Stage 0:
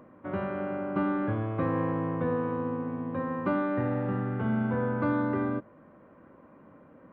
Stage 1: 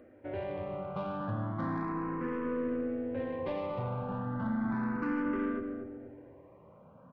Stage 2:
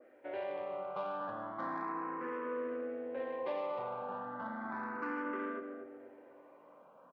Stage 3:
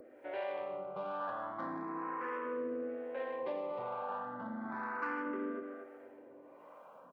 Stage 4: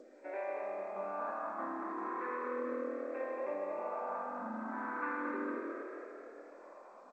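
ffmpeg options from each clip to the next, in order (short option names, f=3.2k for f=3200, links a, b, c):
-filter_complex "[0:a]asoftclip=type=tanh:threshold=-27dB,asplit=2[a][b];[b]adelay=239,lowpass=f=810:p=1,volume=-4dB,asplit=2[c][d];[d]adelay=239,lowpass=f=810:p=1,volume=0.55,asplit=2[e][f];[f]adelay=239,lowpass=f=810:p=1,volume=0.55,asplit=2[g][h];[h]adelay=239,lowpass=f=810:p=1,volume=0.55,asplit=2[i][j];[j]adelay=239,lowpass=f=810:p=1,volume=0.55,asplit=2[k][l];[l]adelay=239,lowpass=f=810:p=1,volume=0.55,asplit=2[m][n];[n]adelay=239,lowpass=f=810:p=1,volume=0.55[o];[a][c][e][g][i][k][m][o]amix=inputs=8:normalize=0,asplit=2[p][q];[q]afreqshift=0.34[r];[p][r]amix=inputs=2:normalize=1"
-filter_complex "[0:a]highpass=510,asplit=2[a][b];[b]adelay=1283,volume=-29dB,highshelf=f=4k:g=-28.9[c];[a][c]amix=inputs=2:normalize=0,adynamicequalizer=threshold=0.002:dfrequency=1700:dqfactor=0.7:tfrequency=1700:tqfactor=0.7:attack=5:release=100:ratio=0.375:range=2:mode=cutabove:tftype=highshelf,volume=1dB"
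-filter_complex "[0:a]acompressor=mode=upward:threshold=-50dB:ratio=2.5,acrossover=split=520[a][b];[a]aeval=exprs='val(0)*(1-0.7/2+0.7/2*cos(2*PI*1.1*n/s))':c=same[c];[b]aeval=exprs='val(0)*(1-0.7/2-0.7/2*cos(2*PI*1.1*n/s))':c=same[d];[c][d]amix=inputs=2:normalize=0,volume=3.5dB"
-filter_complex "[0:a]asplit=9[a][b][c][d][e][f][g][h][i];[b]adelay=225,afreqshift=39,volume=-6dB[j];[c]adelay=450,afreqshift=78,volume=-10.4dB[k];[d]adelay=675,afreqshift=117,volume=-14.9dB[l];[e]adelay=900,afreqshift=156,volume=-19.3dB[m];[f]adelay=1125,afreqshift=195,volume=-23.7dB[n];[g]adelay=1350,afreqshift=234,volume=-28.2dB[o];[h]adelay=1575,afreqshift=273,volume=-32.6dB[p];[i]adelay=1800,afreqshift=312,volume=-37.1dB[q];[a][j][k][l][m][n][o][p][q]amix=inputs=9:normalize=0,afftfilt=real='re*between(b*sr/4096,190,2700)':imag='im*between(b*sr/4096,190,2700)':win_size=4096:overlap=0.75,volume=-1dB" -ar 16000 -c:a g722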